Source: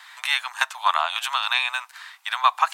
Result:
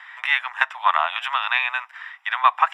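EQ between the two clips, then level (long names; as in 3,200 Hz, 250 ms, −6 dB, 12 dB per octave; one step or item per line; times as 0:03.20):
Savitzky-Golay smoothing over 25 samples
parametric band 1,900 Hz +7 dB 0.21 octaves
+2.0 dB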